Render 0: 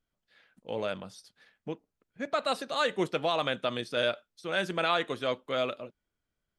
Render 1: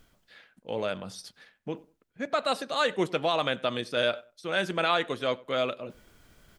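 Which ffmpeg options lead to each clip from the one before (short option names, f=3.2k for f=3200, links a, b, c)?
-filter_complex "[0:a]areverse,acompressor=mode=upward:threshold=-38dB:ratio=2.5,areverse,asplit=2[a][b];[b]adelay=95,lowpass=f=2k:p=1,volume=-22dB,asplit=2[c][d];[d]adelay=95,lowpass=f=2k:p=1,volume=0.25[e];[a][c][e]amix=inputs=3:normalize=0,volume=2dB"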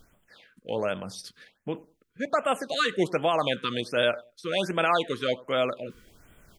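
-af "afftfilt=real='re*(1-between(b*sr/1024,670*pow(5200/670,0.5+0.5*sin(2*PI*1.3*pts/sr))/1.41,670*pow(5200/670,0.5+0.5*sin(2*PI*1.3*pts/sr))*1.41))':imag='im*(1-between(b*sr/1024,670*pow(5200/670,0.5+0.5*sin(2*PI*1.3*pts/sr))/1.41,670*pow(5200/670,0.5+0.5*sin(2*PI*1.3*pts/sr))*1.41))':win_size=1024:overlap=0.75,volume=2.5dB"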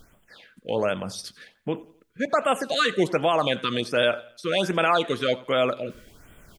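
-filter_complex "[0:a]asplit=2[a][b];[b]alimiter=limit=-20dB:level=0:latency=1,volume=-2.5dB[c];[a][c]amix=inputs=2:normalize=0,aecho=1:1:86|172|258:0.0794|0.0365|0.0168"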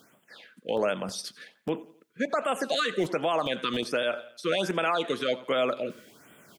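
-filter_complex "[0:a]acrossover=split=140|1200|1900[a][b][c][d];[a]acrusher=bits=5:mix=0:aa=0.000001[e];[e][b][c][d]amix=inputs=4:normalize=0,alimiter=limit=-17dB:level=0:latency=1:release=130"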